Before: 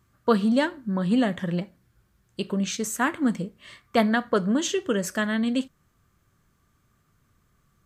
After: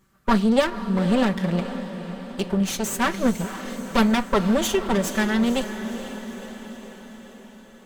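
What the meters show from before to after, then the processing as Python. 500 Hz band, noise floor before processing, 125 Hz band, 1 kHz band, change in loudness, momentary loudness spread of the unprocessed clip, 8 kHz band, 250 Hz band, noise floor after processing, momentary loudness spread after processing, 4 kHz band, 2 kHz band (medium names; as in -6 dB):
+2.5 dB, -67 dBFS, +4.0 dB, +4.0 dB, +2.0 dB, 11 LU, +2.5 dB, +2.5 dB, -48 dBFS, 17 LU, +3.5 dB, +2.0 dB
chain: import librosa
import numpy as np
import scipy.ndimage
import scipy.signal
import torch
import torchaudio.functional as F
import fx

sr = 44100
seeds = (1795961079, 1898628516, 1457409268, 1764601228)

y = fx.lower_of_two(x, sr, delay_ms=5.2)
y = fx.echo_diffused(y, sr, ms=496, feedback_pct=60, wet_db=-11)
y = F.gain(torch.from_numpy(y), 4.0).numpy()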